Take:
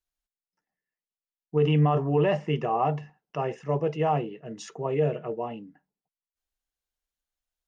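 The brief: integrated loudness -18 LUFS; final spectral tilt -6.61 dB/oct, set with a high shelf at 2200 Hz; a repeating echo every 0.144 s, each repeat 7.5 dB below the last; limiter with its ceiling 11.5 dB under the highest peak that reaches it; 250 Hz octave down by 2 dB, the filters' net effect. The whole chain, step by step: bell 250 Hz -3.5 dB; high shelf 2200 Hz -9 dB; limiter -25.5 dBFS; feedback echo 0.144 s, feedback 42%, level -7.5 dB; gain +16.5 dB

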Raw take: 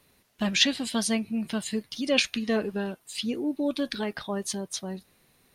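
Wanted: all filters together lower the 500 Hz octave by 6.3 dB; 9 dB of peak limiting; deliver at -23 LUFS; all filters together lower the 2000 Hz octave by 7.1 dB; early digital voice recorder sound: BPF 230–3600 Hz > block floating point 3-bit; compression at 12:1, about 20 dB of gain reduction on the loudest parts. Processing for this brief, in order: bell 500 Hz -7 dB; bell 2000 Hz -8.5 dB; compressor 12:1, threshold -40 dBFS; limiter -35 dBFS; BPF 230–3600 Hz; block floating point 3-bit; gain +25 dB

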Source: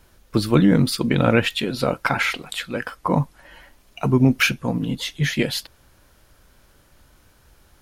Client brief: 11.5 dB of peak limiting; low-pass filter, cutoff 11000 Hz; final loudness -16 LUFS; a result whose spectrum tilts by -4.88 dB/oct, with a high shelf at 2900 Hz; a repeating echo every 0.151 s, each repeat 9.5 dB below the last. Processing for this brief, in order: LPF 11000 Hz; high shelf 2900 Hz -6 dB; limiter -14.5 dBFS; feedback echo 0.151 s, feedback 33%, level -9.5 dB; gain +9.5 dB

